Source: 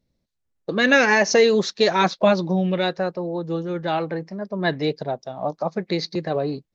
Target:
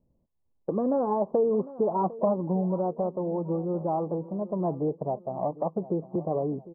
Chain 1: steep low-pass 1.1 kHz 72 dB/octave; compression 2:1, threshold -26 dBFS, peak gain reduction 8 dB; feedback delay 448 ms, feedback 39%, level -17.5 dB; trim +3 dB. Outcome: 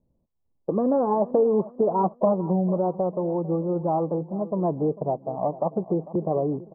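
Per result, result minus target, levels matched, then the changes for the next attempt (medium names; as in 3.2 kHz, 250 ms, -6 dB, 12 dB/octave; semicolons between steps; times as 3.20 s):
echo 304 ms early; compression: peak gain reduction -4 dB
change: feedback delay 752 ms, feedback 39%, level -17.5 dB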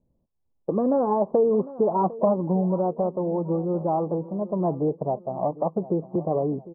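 compression: peak gain reduction -4 dB
change: compression 2:1, threshold -33.5 dBFS, peak gain reduction 11.5 dB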